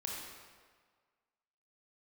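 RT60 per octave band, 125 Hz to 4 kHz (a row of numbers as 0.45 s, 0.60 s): 1.5 s, 1.5 s, 1.6 s, 1.7 s, 1.4 s, 1.2 s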